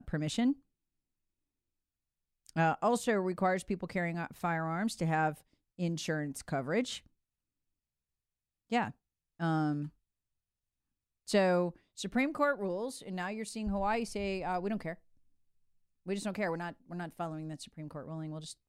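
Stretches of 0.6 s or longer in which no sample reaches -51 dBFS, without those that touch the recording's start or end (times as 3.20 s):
0.54–2.46 s
7.06–8.70 s
9.89–11.27 s
14.95–16.06 s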